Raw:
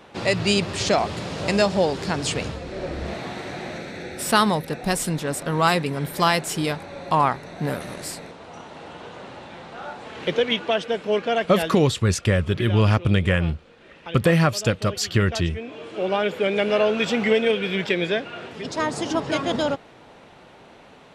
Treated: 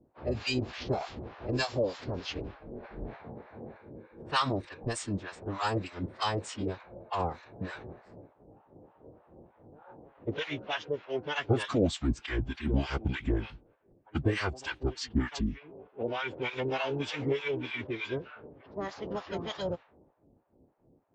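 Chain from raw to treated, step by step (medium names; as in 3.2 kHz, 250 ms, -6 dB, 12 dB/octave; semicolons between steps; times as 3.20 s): level-controlled noise filter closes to 320 Hz, open at -18 dBFS; formant-preserving pitch shift -8 st; harmonic tremolo 3.3 Hz, depth 100%, crossover 780 Hz; trim -6 dB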